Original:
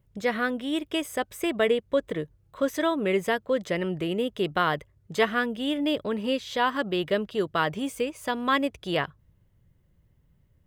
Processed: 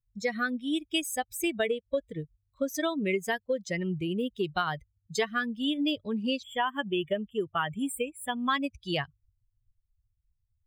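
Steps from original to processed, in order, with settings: per-bin expansion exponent 2; compressor, threshold -29 dBFS, peak gain reduction 9.5 dB; high shelf 3200 Hz +9 dB; spectral delete 6.43–8.5, 3500–7300 Hz; high shelf 11000 Hz -7 dB; gain +3.5 dB

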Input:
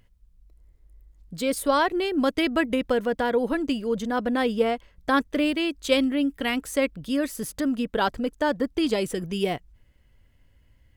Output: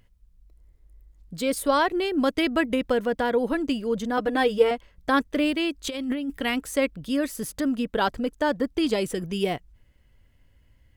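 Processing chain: 4.17–4.71 comb 6.5 ms, depth 72%; 5.87–6.39 negative-ratio compressor -29 dBFS, ratio -1

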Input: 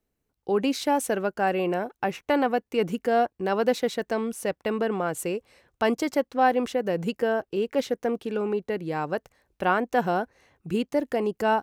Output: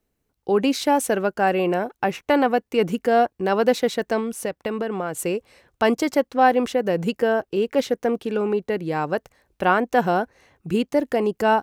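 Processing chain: 4.19–5.19 compressor, threshold -27 dBFS, peak gain reduction 6 dB; gain +4.5 dB

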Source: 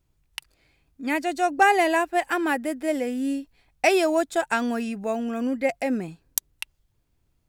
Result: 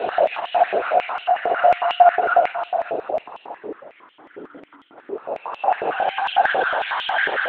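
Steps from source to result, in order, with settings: sample leveller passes 2; limiter -12 dBFS, peak gain reduction 7 dB; chorus voices 2, 0.44 Hz, delay 29 ms, depth 3.8 ms; Paulstretch 30×, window 0.05 s, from 1.41; LPC vocoder at 8 kHz whisper; stepped high-pass 11 Hz 450–3000 Hz; gain -1.5 dB

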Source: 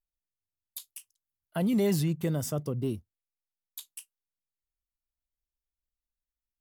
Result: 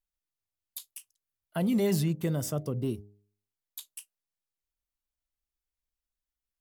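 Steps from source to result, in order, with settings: de-hum 102.4 Hz, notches 8

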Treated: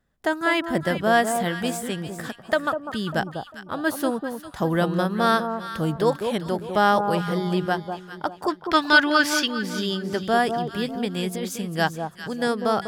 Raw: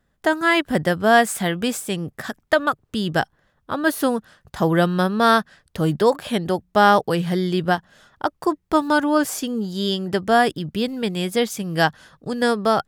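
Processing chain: 8.48–9.51 band shelf 2800 Hz +14.5 dB 2.3 oct; 11.14–11.67 negative-ratio compressor -23 dBFS, ratio -1; on a send: echo with dull and thin repeats by turns 0.199 s, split 1100 Hz, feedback 55%, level -6 dB; on the sum: gain -4.5 dB

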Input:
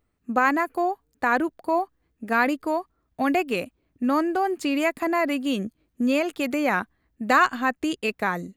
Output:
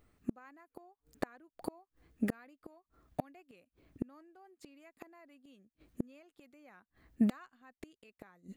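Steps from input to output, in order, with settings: notch 950 Hz, Q 20; flipped gate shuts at -24 dBFS, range -40 dB; gain +4.5 dB

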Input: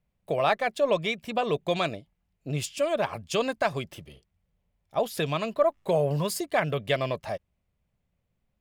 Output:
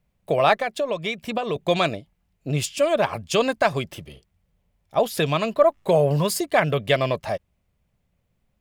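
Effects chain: 0.59–1.56 compressor 6:1, threshold -28 dBFS, peak gain reduction 9 dB; gain +6 dB

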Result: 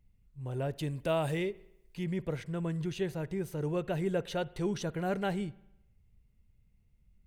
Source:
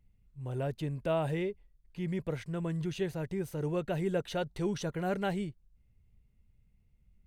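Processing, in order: 0.76–2.04 high shelf 3100 Hz +9 dB; on a send: reverb RT60 0.85 s, pre-delay 53 ms, DRR 20.5 dB

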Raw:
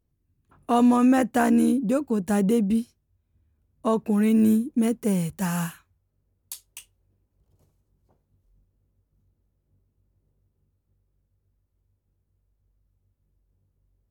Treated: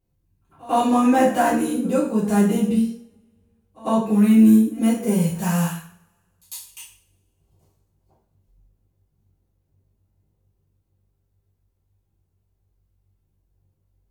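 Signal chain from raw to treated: pre-echo 0.1 s -22.5 dB; two-slope reverb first 0.47 s, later 1.7 s, from -28 dB, DRR -9 dB; gain -5.5 dB

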